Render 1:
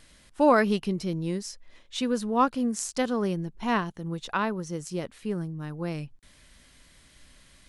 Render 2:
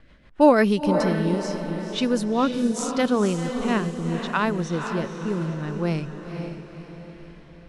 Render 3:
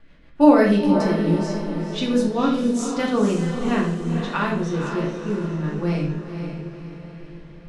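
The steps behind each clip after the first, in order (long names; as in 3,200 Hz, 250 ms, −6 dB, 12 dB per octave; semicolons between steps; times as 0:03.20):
low-pass that shuts in the quiet parts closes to 1,900 Hz, open at −23.5 dBFS; rotating-speaker cabinet horn 6.3 Hz, later 0.75 Hz, at 0:00.28; feedback delay with all-pass diffusion 491 ms, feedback 48%, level −7 dB; level +6.5 dB
convolution reverb RT60 0.60 s, pre-delay 3 ms, DRR −2.5 dB; level −4 dB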